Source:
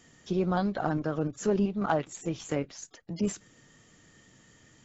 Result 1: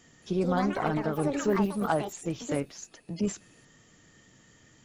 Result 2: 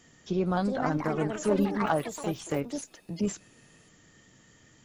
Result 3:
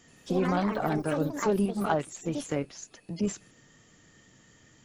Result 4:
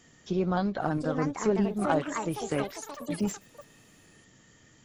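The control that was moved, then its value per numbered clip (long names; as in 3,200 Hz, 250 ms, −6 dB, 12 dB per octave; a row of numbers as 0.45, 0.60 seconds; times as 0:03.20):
delay with pitch and tempo change per echo, delay time: 222, 460, 83, 817 milliseconds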